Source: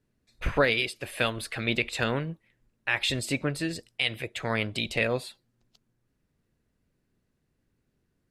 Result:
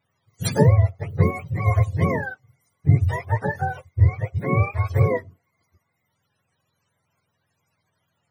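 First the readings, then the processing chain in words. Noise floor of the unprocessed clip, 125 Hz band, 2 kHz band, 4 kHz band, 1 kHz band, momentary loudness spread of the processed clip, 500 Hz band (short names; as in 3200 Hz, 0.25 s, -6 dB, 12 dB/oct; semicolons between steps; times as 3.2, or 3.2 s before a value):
-77 dBFS, +17.5 dB, -3.0 dB, under -10 dB, +7.0 dB, 10 LU, +4.0 dB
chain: spectrum mirrored in octaves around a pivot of 500 Hz; gain +6.5 dB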